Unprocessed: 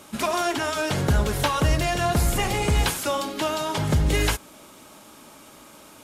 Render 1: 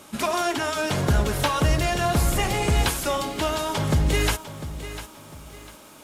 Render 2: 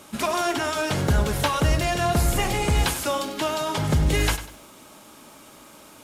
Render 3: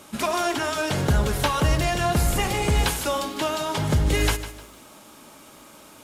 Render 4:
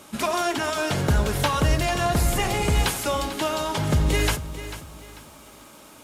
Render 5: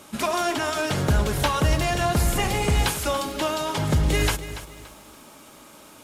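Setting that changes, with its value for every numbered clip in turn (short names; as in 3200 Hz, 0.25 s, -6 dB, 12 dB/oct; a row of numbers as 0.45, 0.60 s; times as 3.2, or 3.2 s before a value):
lo-fi delay, time: 700, 98, 152, 444, 286 ms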